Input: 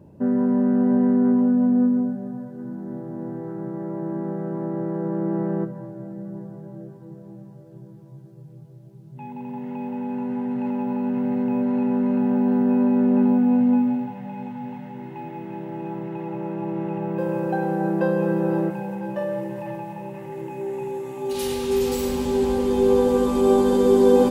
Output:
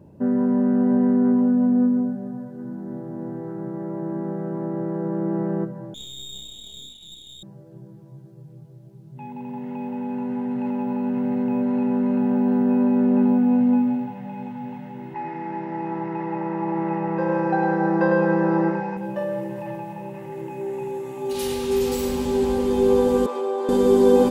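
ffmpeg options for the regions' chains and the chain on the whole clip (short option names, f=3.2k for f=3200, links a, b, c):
-filter_complex "[0:a]asettb=1/sr,asplit=3[a][b][c];[a]atrim=end=5.944[d];[b]atrim=start=5.94:end=7.43,asetpts=PTS-STARTPTS,afade=t=in:d=0.004:c=qsin,afade=t=out:st=1.486:d=0.004:c=qsin,lowpass=f=3.3k:t=q:w=0.5098,lowpass=f=3.3k:t=q:w=0.6013,lowpass=f=3.3k:t=q:w=0.9,lowpass=f=3.3k:t=q:w=2.563,afreqshift=-3900,aeval=exprs='clip(val(0),-1,0.00398)':c=same[e];[c]atrim=start=7.426[f];[d][e]acrossfade=d=0.004:c1=hsin:c2=qsin[g];[g][f]acrossfade=d=0.004:c1=qsin:c2=hsin,asettb=1/sr,asplit=3[h][i][j];[h]atrim=end=15.144[k];[i]atrim=start=15.14:end=18.97,asetpts=PTS-STARTPTS,afade=t=in:d=0.004:c=qsin,afade=t=out:st=3.826:d=0.004:c=qsin,highpass=170,equalizer=f=910:t=q:w=4:g=8,equalizer=f=1.3k:t=q:w=4:g=5,equalizer=f=1.9k:t=q:w=4:g=10,equalizer=f=3.2k:t=q:w=4:g=-5,equalizer=f=5.2k:t=q:w=4:g=6,lowpass=f=5.9k:w=0.5412,lowpass=f=5.9k:w=1.3066,aecho=1:1:103:0.531,atrim=end_sample=168903[l];[j]atrim=start=18.966[m];[k][l]acrossfade=d=0.004:c1=hsin:c2=qsin[n];[n][m]acrossfade=d=0.004:c1=qsin:c2=hsin,asettb=1/sr,asplit=3[o][p][q];[o]atrim=end=23.264[r];[p]atrim=start=23.26:end=23.69,asetpts=PTS-STARTPTS,afade=t=in:d=0.004:c=qsin,afade=t=out:st=0.426:d=0.004:c=qsin,highpass=f=410:w=0.5412,highpass=f=410:w=1.3066,aemphasis=mode=reproduction:type=75kf,acompressor=threshold=-22dB:ratio=3:attack=3.2:release=140:knee=1:detection=peak[s];[q]atrim=start=23.686[t];[r][s]acrossfade=d=0.004:c1=hsin:c2=qsin[u];[u][t]acrossfade=d=0.004:c1=qsin:c2=hsin"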